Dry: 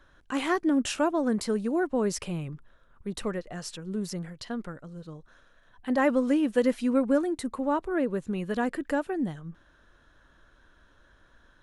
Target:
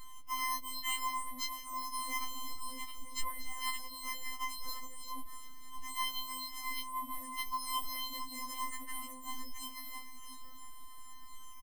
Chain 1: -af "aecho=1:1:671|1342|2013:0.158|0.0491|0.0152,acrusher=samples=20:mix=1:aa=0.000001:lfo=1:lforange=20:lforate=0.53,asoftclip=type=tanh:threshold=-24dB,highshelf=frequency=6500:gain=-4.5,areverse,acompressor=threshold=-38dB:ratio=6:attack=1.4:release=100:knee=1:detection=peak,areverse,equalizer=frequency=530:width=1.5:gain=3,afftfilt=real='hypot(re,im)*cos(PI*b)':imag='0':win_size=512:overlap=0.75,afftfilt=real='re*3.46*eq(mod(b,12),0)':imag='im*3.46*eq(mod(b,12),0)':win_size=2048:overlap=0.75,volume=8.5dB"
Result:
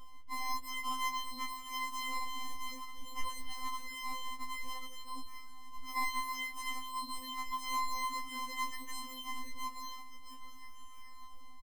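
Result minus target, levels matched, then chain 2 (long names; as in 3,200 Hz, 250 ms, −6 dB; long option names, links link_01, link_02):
sample-and-hold swept by an LFO: distortion +7 dB; 8,000 Hz band −4.0 dB
-af "aecho=1:1:671|1342|2013:0.158|0.0491|0.0152,acrusher=samples=8:mix=1:aa=0.000001:lfo=1:lforange=8:lforate=0.53,asoftclip=type=tanh:threshold=-24dB,highshelf=frequency=6500:gain=5.5,areverse,acompressor=threshold=-38dB:ratio=6:attack=1.4:release=100:knee=1:detection=peak,areverse,equalizer=frequency=530:width=1.5:gain=3,afftfilt=real='hypot(re,im)*cos(PI*b)':imag='0':win_size=512:overlap=0.75,afftfilt=real='re*3.46*eq(mod(b,12),0)':imag='im*3.46*eq(mod(b,12),0)':win_size=2048:overlap=0.75,volume=8.5dB"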